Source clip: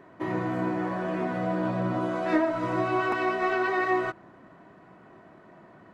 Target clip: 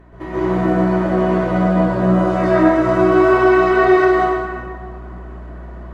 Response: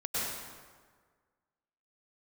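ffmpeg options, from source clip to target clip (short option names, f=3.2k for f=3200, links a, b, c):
-filter_complex "[0:a]aeval=exprs='val(0)+0.00501*(sin(2*PI*60*n/s)+sin(2*PI*2*60*n/s)/2+sin(2*PI*3*60*n/s)/3+sin(2*PI*4*60*n/s)/4+sin(2*PI*5*60*n/s)/5)':c=same,asettb=1/sr,asplit=3[a][b][c];[a]atrim=end=1.674[d];[b]atrim=start=1.67:end=3.71,asetpts=PTS-STARTPTS,afade=t=in:d=0.004:c=qsin,afade=t=out:st=2.036:d=0.004:c=qsin,acrossover=split=3800[e][f];[e]adelay=90[g];[g][f]amix=inputs=2:normalize=0,atrim=end_sample=89964[h];[c]atrim=start=3.706[i];[d][h]acrossfade=d=0.004:c1=hsin:c2=qsin[j];[j][i]acrossfade=d=0.004:c1=qsin:c2=hsin[k];[1:a]atrim=start_sample=2205,asetrate=36162,aresample=44100[l];[k][l]afir=irnorm=-1:irlink=0,volume=3dB"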